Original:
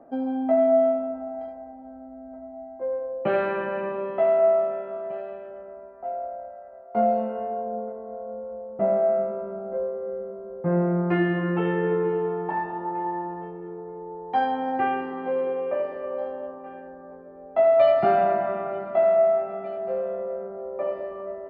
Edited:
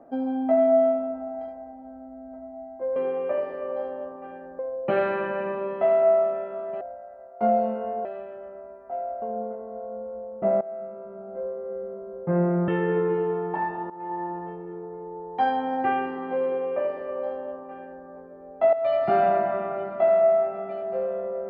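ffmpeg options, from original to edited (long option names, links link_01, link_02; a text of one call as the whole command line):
ffmpeg -i in.wav -filter_complex "[0:a]asplit=10[link_01][link_02][link_03][link_04][link_05][link_06][link_07][link_08][link_09][link_10];[link_01]atrim=end=2.962[link_11];[link_02]atrim=start=15.378:end=17.012[link_12];[link_03]atrim=start=2.958:end=5.182[link_13];[link_04]atrim=start=6.348:end=7.592[link_14];[link_05]atrim=start=5.178:end=6.352[link_15];[link_06]atrim=start=7.588:end=8.98,asetpts=PTS-STARTPTS,afade=type=out:start_time=1.388:duration=0.004:curve=hsin:silence=0.141254[link_16];[link_07]atrim=start=8.98:end=11.052,asetpts=PTS-STARTPTS,afade=type=in:duration=1.39:silence=0.141254[link_17];[link_08]atrim=start=11.628:end=12.85,asetpts=PTS-STARTPTS,afade=type=out:start_time=1.218:duration=0.004:curve=hsin:silence=0.133352[link_18];[link_09]atrim=start=12.85:end=17.68,asetpts=PTS-STARTPTS,afade=type=in:duration=0.48:curve=qsin:silence=0.133352,afade=type=out:start_time=4.826:duration=0.004:curve=hsin:silence=0.223872[link_19];[link_10]atrim=start=17.68,asetpts=PTS-STARTPTS,afade=type=in:duration=0.49:silence=0.223872[link_20];[link_11][link_12]acrossfade=duration=0.004:curve1=hsin:curve2=hsin[link_21];[link_21][link_13]acrossfade=duration=0.004:curve1=hsin:curve2=hsin[link_22];[link_22][link_14]acrossfade=duration=0.004:curve1=hsin:curve2=hsin[link_23];[link_23][link_15]acrossfade=duration=0.004:curve1=hsin:curve2=hsin[link_24];[link_16][link_17]concat=n=2:v=0:a=1[link_25];[link_24][link_25]acrossfade=duration=0.004:curve1=hsin:curve2=hsin[link_26];[link_18][link_19][link_20]concat=n=3:v=0:a=1[link_27];[link_26][link_27]acrossfade=duration=0.004:curve1=hsin:curve2=hsin" out.wav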